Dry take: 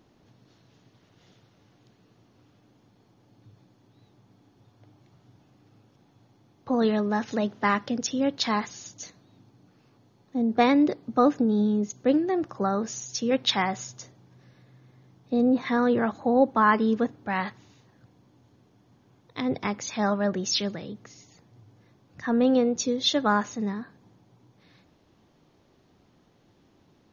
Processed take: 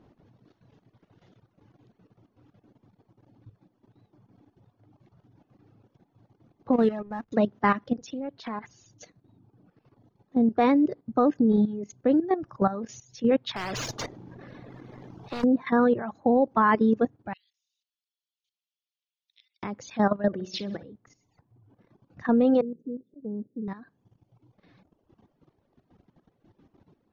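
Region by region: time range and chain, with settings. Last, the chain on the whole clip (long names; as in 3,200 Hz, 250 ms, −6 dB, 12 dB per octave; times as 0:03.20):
0:06.73–0:07.32: slack as between gear wheels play −33.5 dBFS + expander for the loud parts, over −36 dBFS
0:07.94–0:08.84: downward compressor 8 to 1, threshold −28 dBFS + highs frequency-modulated by the lows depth 0.21 ms
0:13.56–0:15.44: leveller curve on the samples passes 1 + every bin compressed towards the loudest bin 4 to 1
0:17.33–0:19.63: Butterworth high-pass 2,800 Hz + downward compressor 2 to 1, threshold −56 dBFS
0:20.27–0:20.83: high-pass filter 53 Hz + high-shelf EQ 5,800 Hz −7 dB + flutter between parallel walls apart 10.3 metres, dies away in 0.61 s
0:22.61–0:23.68: elliptic band-pass filter 140–450 Hz, stop band 50 dB + volume swells 221 ms
whole clip: reverb reduction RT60 1.2 s; low-pass filter 1,200 Hz 6 dB per octave; output level in coarse steps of 13 dB; level +6.5 dB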